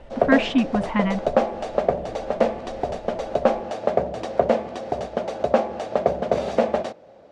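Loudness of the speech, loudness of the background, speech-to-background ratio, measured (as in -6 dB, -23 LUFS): -23.0 LUFS, -24.5 LUFS, 1.5 dB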